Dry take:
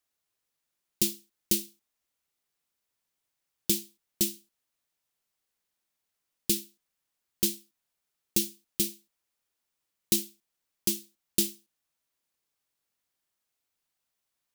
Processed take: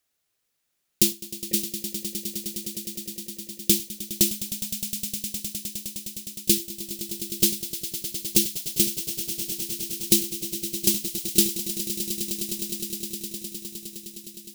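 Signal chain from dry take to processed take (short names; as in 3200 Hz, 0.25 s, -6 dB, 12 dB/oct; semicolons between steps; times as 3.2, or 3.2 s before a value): 1.12–1.54 vocal tract filter e; bell 1000 Hz -4.5 dB 0.64 oct; swelling echo 0.103 s, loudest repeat 8, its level -14 dB; gain +6.5 dB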